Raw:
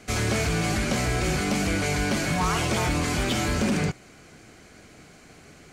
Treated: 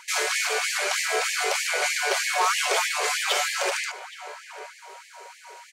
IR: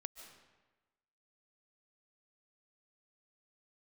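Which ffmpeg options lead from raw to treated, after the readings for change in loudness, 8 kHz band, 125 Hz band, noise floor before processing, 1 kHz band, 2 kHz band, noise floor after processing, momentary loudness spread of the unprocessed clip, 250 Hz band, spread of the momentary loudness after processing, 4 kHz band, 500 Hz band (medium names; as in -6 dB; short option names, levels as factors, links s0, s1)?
+1.5 dB, +5.0 dB, under -40 dB, -51 dBFS, +3.0 dB, +4.5 dB, -50 dBFS, 1 LU, under -20 dB, 17 LU, +5.0 dB, -1.0 dB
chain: -filter_complex "[0:a]asplit=2[s0][s1];[s1]adelay=821,lowpass=f=1500:p=1,volume=0.251,asplit=2[s2][s3];[s3]adelay=821,lowpass=f=1500:p=1,volume=0.37,asplit=2[s4][s5];[s5]adelay=821,lowpass=f=1500:p=1,volume=0.37,asplit=2[s6][s7];[s7]adelay=821,lowpass=f=1500:p=1,volume=0.37[s8];[s0][s2][s4][s6][s8]amix=inputs=5:normalize=0,aeval=exprs='val(0)+0.00355*sin(2*PI*950*n/s)':c=same,acontrast=24,afftfilt=real='re*gte(b*sr/1024,360*pow(1700/360,0.5+0.5*sin(2*PI*3.2*pts/sr)))':imag='im*gte(b*sr/1024,360*pow(1700/360,0.5+0.5*sin(2*PI*3.2*pts/sr)))':win_size=1024:overlap=0.75"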